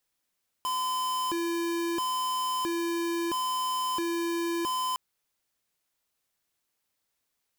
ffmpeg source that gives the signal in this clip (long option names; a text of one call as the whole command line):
ffmpeg -f lavfi -i "aevalsrc='0.0335*(2*lt(mod((679.5*t+340.5/0.75*(0.5-abs(mod(0.75*t,1)-0.5))),1),0.5)-1)':duration=4.31:sample_rate=44100" out.wav